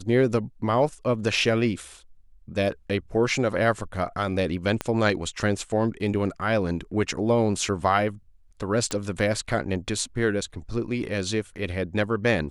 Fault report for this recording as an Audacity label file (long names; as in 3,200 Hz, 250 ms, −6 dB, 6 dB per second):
4.810000	4.810000	click −12 dBFS
8.910000	8.910000	click −14 dBFS